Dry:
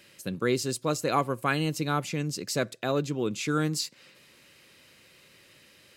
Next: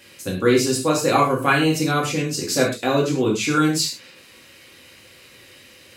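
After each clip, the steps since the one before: bell 200 Hz -5 dB 0.41 oct; non-linear reverb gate 0.15 s falling, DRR -3.5 dB; gain +4.5 dB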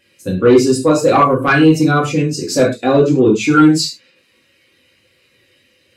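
sine folder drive 8 dB, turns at -3 dBFS; spectral expander 1.5:1; gain +1.5 dB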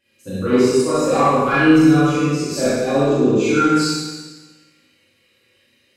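Schroeder reverb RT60 1.3 s, combs from 28 ms, DRR -8.5 dB; gain -12.5 dB

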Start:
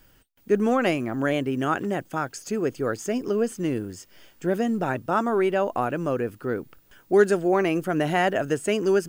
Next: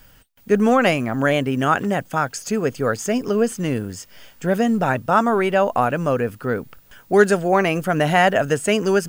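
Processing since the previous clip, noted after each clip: bell 340 Hz -10.5 dB 0.43 oct; gain +7.5 dB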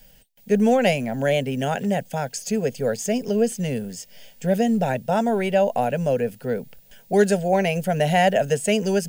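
fixed phaser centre 320 Hz, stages 6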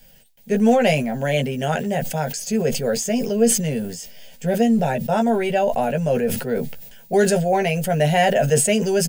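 doubler 13 ms -5 dB; sustainer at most 61 dB/s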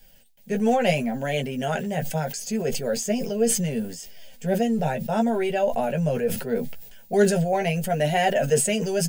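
flange 0.73 Hz, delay 2.3 ms, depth 4.7 ms, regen +51%

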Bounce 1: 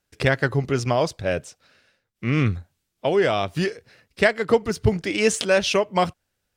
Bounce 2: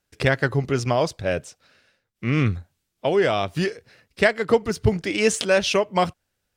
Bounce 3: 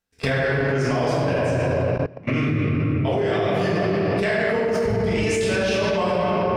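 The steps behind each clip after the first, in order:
nothing audible
shoebox room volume 190 m³, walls hard, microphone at 1.6 m; level quantiser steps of 21 dB

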